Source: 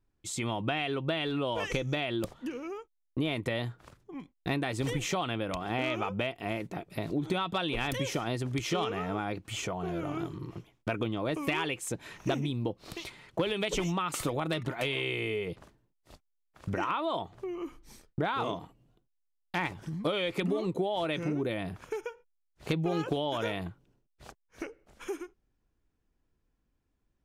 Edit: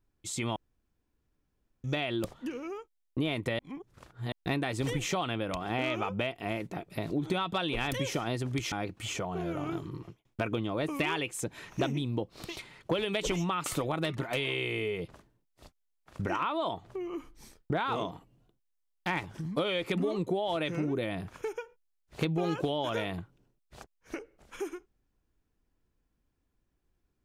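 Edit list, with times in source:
0:00.56–0:01.84: fill with room tone
0:03.59–0:04.32: reverse
0:08.72–0:09.20: remove
0:10.44–0:10.73: fade out

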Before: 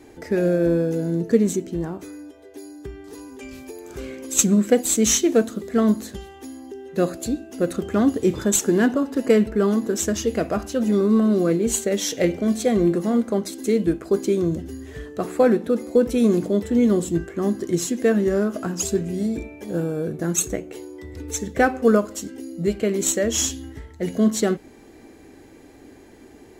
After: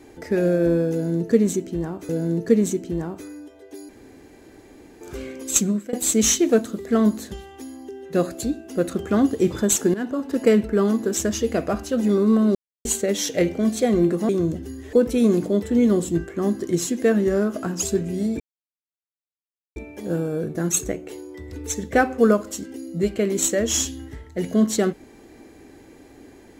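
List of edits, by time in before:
0:00.92–0:02.09: repeat, 2 plays
0:02.72–0:03.84: fill with room tone
0:04.34–0:04.76: fade out, to −21 dB
0:08.77–0:09.19: fade in, from −14.5 dB
0:11.38–0:11.68: silence
0:13.12–0:14.32: remove
0:14.96–0:15.93: remove
0:19.40: splice in silence 1.36 s

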